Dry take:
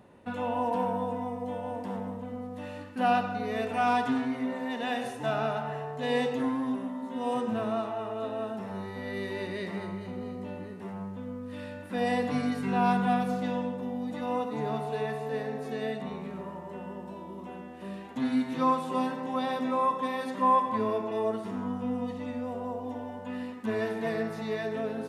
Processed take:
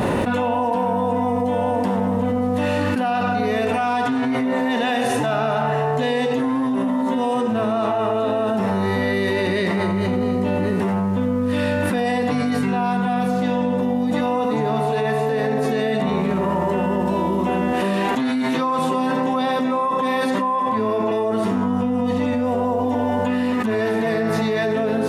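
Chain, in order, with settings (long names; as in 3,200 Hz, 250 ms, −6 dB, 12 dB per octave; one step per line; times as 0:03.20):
0:17.73–0:18.79: high-pass filter 270 Hz 6 dB per octave
envelope flattener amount 100%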